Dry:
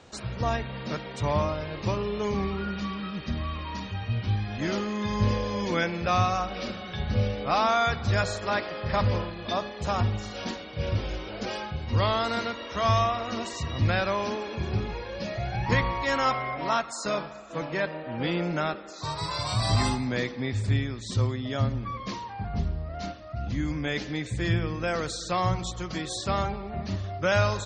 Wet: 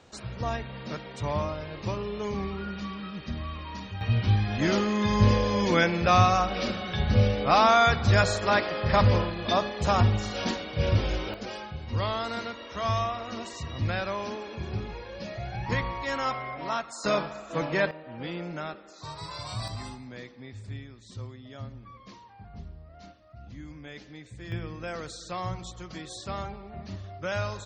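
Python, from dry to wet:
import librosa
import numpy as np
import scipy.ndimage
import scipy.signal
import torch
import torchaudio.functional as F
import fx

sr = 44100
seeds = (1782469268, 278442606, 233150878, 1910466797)

y = fx.gain(x, sr, db=fx.steps((0.0, -3.5), (4.01, 4.0), (11.34, -4.5), (17.04, 3.0), (17.91, -7.5), (19.68, -14.0), (24.52, -7.5)))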